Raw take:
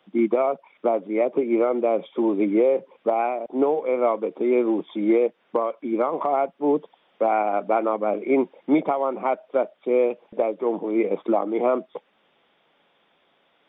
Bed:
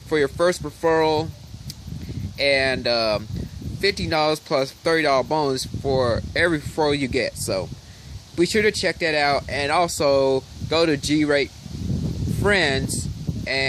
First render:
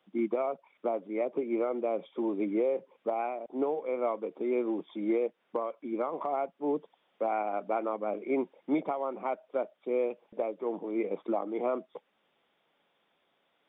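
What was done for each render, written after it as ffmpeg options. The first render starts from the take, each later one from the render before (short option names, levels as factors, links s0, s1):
-af "volume=0.335"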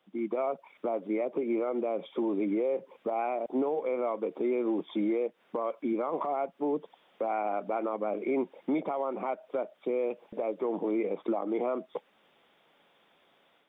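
-af "alimiter=level_in=2:limit=0.0631:level=0:latency=1:release=156,volume=0.501,dynaudnorm=f=140:g=3:m=2.51"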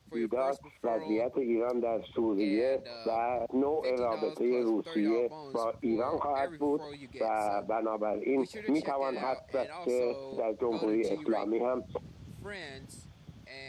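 -filter_complex "[1:a]volume=0.0631[s0];[0:a][s0]amix=inputs=2:normalize=0"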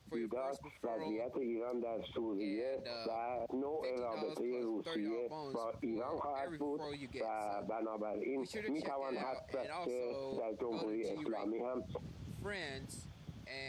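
-af "alimiter=level_in=1.88:limit=0.0631:level=0:latency=1:release=31,volume=0.531,acompressor=threshold=0.0158:ratio=6"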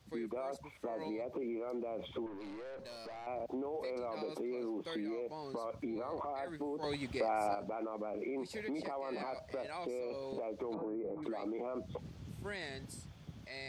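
-filter_complex "[0:a]asettb=1/sr,asplit=3[s0][s1][s2];[s0]atrim=end=2.264[s3];[s1]atrim=start=2.26:end=3.27,asetpts=PTS-STARTPTS,afade=t=in:d=0.004:c=qsin,afade=t=out:st=1.006:d=0.004:c=qsin,aeval=exprs='(tanh(158*val(0)+0.25)-tanh(0.25))/158':c=same[s4];[s2]atrim=start=3.266[s5];[s3][s4]acrossfade=d=0.004:c1=hsin:c2=qsin[s6];[s6][s5]acrossfade=d=0.004:c1=qsin:c2=hsin,asettb=1/sr,asplit=3[s7][s8][s9];[s7]atrim=end=10.744[s10];[s8]atrim=start=10.74:end=11.23,asetpts=PTS-STARTPTS,afade=t=in:d=0.004:c=qsin,afade=t=out:st=0.486:d=0.004:c=qsin,lowpass=f=1400:w=0.5412,lowpass=f=1400:w=1.3066[s11];[s9]atrim=start=11.226[s12];[s10][s11]acrossfade=d=0.004:c1=hsin:c2=qsin[s13];[s13][s12]acrossfade=d=0.004:c1=qsin:c2=hsin,asplit=3[s14][s15][s16];[s14]atrim=end=6.832[s17];[s15]atrim=start=6.828:end=7.552,asetpts=PTS-STARTPTS,volume=2.11[s18];[s16]atrim=start=7.548[s19];[s17][s18]acrossfade=d=0.004:c1=hsin:c2=hsin[s20];[s20][s19]acrossfade=d=0.004:c1=hsin:c2=hsin"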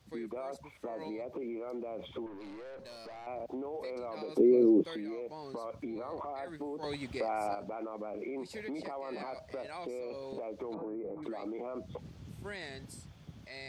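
-filter_complex "[0:a]asettb=1/sr,asplit=3[s0][s1][s2];[s0]atrim=end=4.374[s3];[s1]atrim=start=4.37:end=4.84,asetpts=PTS-STARTPTS,afade=t=in:d=0.004:c=qsin,afade=t=out:st=0.466:d=0.004:c=qsin,lowshelf=f=630:t=q:w=1.5:g=13.5[s4];[s2]atrim=start=4.836[s5];[s3][s4]acrossfade=d=0.004:c1=hsin:c2=qsin[s6];[s6][s5]acrossfade=d=0.004:c1=qsin:c2=hsin"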